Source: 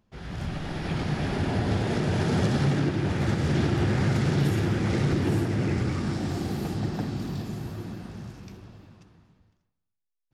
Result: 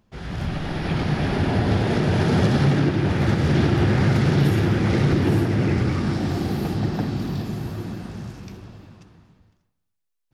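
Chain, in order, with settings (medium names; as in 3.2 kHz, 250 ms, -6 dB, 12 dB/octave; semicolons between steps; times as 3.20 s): dynamic bell 7.7 kHz, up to -7 dB, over -60 dBFS, Q 1.7; trim +5.5 dB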